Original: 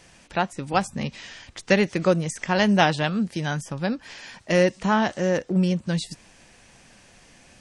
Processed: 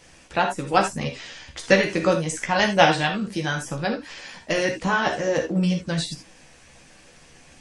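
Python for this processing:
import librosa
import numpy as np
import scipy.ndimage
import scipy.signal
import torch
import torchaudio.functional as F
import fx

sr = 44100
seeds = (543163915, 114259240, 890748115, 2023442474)

y = fx.hpss(x, sr, part='harmonic', gain_db=-6)
y = fx.rev_gated(y, sr, seeds[0], gate_ms=100, shape='flat', drr_db=4.0)
y = fx.chorus_voices(y, sr, voices=4, hz=0.73, base_ms=14, depth_ms=2.0, mix_pct=35)
y = F.gain(torch.from_numpy(y), 5.5).numpy()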